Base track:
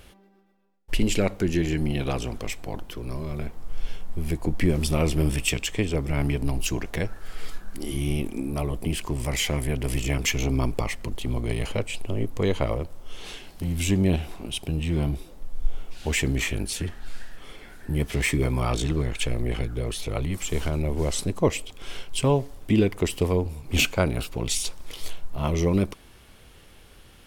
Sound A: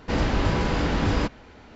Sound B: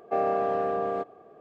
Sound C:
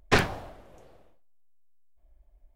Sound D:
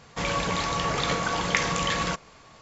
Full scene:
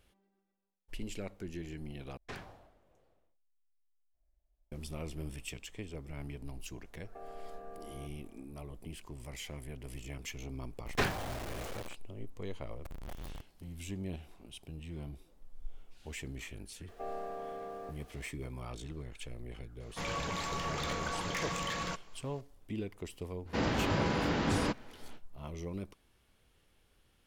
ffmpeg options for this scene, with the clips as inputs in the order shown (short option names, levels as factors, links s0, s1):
-filter_complex "[3:a]asplit=2[s0][s1];[2:a]asplit=2[s2][s3];[0:a]volume=0.119[s4];[s0]alimiter=limit=0.133:level=0:latency=1:release=70[s5];[s2]acompressor=threshold=0.0251:ratio=6:attack=3.2:release=140:knee=1:detection=peak[s6];[s1]aeval=exprs='val(0)+0.5*0.0501*sgn(val(0))':c=same[s7];[s3]aeval=exprs='val(0)+0.5*0.00944*sgn(val(0))':c=same[s8];[4:a]asoftclip=type=hard:threshold=0.0841[s9];[1:a]highpass=100[s10];[s4]asplit=2[s11][s12];[s11]atrim=end=2.174[s13];[s5]atrim=end=2.55,asetpts=PTS-STARTPTS,volume=0.15[s14];[s12]atrim=start=4.716[s15];[s6]atrim=end=1.4,asetpts=PTS-STARTPTS,volume=0.211,afade=t=in:d=0.004:c=hsin,afade=t=out:st=1.396:d=0.004:c=hsin,adelay=7040[s16];[s7]atrim=end=2.55,asetpts=PTS-STARTPTS,volume=0.299,afade=t=in:d=0.004:c=hsin,afade=t=out:st=2.546:d=0.004:c=hsin,adelay=10860[s17];[s8]atrim=end=1.4,asetpts=PTS-STARTPTS,volume=0.158,afade=t=in:d=0.004:c=hsin,afade=t=out:st=1.396:d=0.004:c=hsin,adelay=16880[s18];[s9]atrim=end=2.61,asetpts=PTS-STARTPTS,volume=0.335,afade=t=in:d=0.004:c=hsin,afade=t=out:st=2.606:d=0.004:c=hsin,adelay=19800[s19];[s10]atrim=end=1.75,asetpts=PTS-STARTPTS,volume=0.501,afade=t=in:d=0.05,afade=t=out:st=1.7:d=0.05,adelay=23450[s20];[s13][s14]acrossfade=d=0.004:c1=hsin:c2=hsin[s21];[s21][s15]acrossfade=d=0.004:c1=hsin:c2=hsin[s22];[s22][s16][s17][s18][s19][s20]amix=inputs=6:normalize=0"